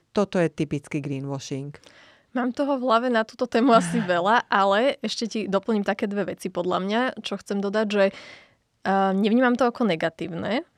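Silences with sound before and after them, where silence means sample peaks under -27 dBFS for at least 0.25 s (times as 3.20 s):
1.76–2.36 s
8.09–8.86 s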